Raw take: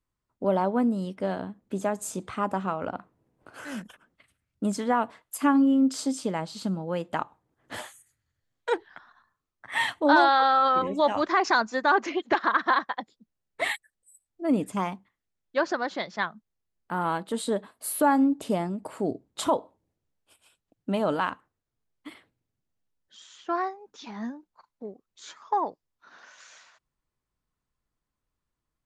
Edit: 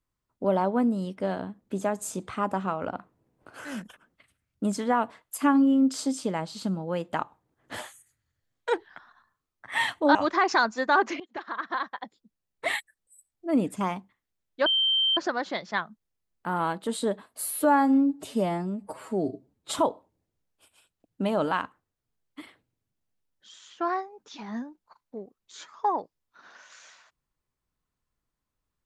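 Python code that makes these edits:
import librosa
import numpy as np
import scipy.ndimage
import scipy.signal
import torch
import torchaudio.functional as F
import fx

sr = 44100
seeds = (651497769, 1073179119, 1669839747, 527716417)

y = fx.edit(x, sr, fx.cut(start_s=10.15, length_s=0.96),
    fx.fade_in_from(start_s=12.16, length_s=1.58, floor_db=-18.5),
    fx.insert_tone(at_s=15.62, length_s=0.51, hz=3130.0, db=-20.5),
    fx.stretch_span(start_s=17.87, length_s=1.54, factor=1.5), tone=tone)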